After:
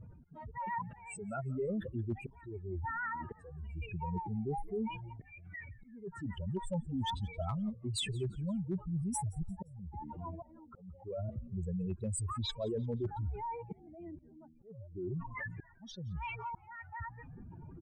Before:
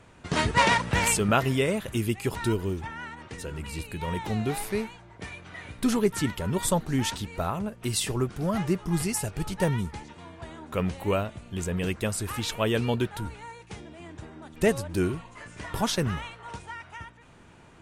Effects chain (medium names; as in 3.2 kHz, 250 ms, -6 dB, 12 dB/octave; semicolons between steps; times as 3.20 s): spectral contrast enhancement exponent 3.6; reverse; compression 6:1, threshold -39 dBFS, peak gain reduction 19 dB; reverse; slow attack 667 ms; overload inside the chain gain 32.5 dB; frequency-shifting echo 174 ms, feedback 40%, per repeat -89 Hz, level -23.5 dB; trim +4.5 dB